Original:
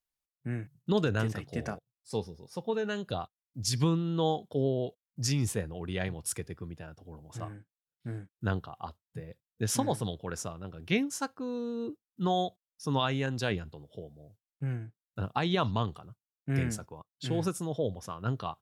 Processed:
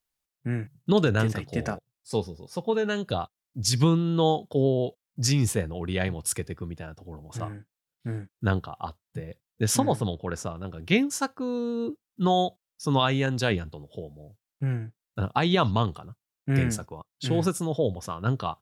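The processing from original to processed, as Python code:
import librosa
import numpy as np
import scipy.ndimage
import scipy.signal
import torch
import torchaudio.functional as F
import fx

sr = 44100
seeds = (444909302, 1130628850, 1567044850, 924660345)

y = fx.high_shelf(x, sr, hz=3700.0, db=-8.0, at=(9.79, 10.56))
y = y * 10.0 ** (6.0 / 20.0)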